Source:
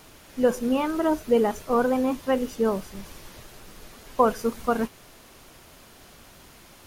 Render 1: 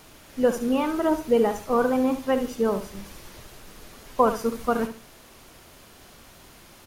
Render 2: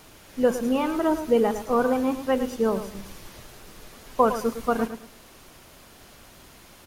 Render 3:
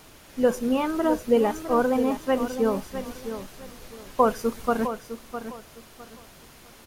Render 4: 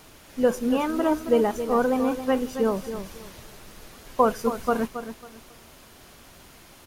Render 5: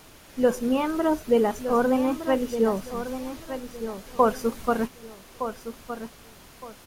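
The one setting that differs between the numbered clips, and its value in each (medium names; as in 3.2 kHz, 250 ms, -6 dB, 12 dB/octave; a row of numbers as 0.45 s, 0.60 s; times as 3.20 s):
feedback delay, time: 70 ms, 108 ms, 657 ms, 272 ms, 1214 ms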